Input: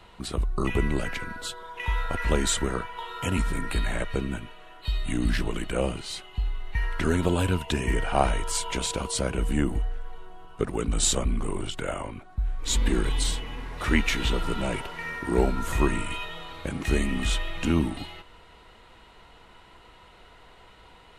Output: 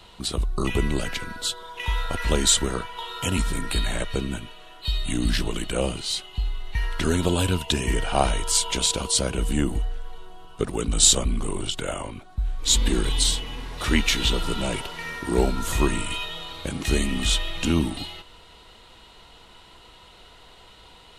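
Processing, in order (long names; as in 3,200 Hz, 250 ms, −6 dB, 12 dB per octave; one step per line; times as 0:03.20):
high shelf with overshoot 2,700 Hz +6 dB, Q 1.5
level +1.5 dB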